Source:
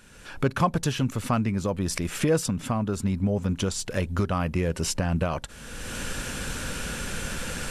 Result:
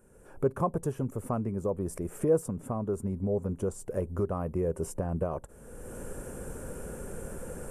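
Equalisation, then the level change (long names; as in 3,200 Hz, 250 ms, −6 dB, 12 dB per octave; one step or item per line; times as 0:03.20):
drawn EQ curve 280 Hz 0 dB, 400 Hz +9 dB, 4,100 Hz −18 dB, 8,900 Hz +10 dB
dynamic equaliser 1,100 Hz, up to +4 dB, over −43 dBFS, Q 3.3
high-shelf EQ 2,600 Hz −11.5 dB
−7.0 dB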